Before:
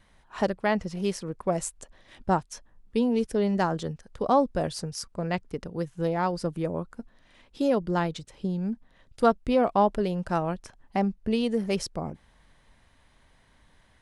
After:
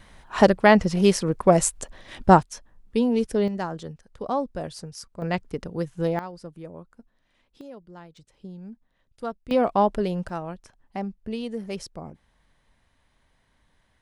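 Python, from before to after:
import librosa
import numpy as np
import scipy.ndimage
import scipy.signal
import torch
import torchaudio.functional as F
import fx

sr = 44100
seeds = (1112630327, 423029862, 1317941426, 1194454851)

y = fx.gain(x, sr, db=fx.steps((0.0, 10.0), (2.43, 2.5), (3.48, -4.5), (5.22, 2.5), (6.19, -10.5), (7.61, -18.5), (8.17, -11.0), (9.51, 1.5), (10.29, -5.5)))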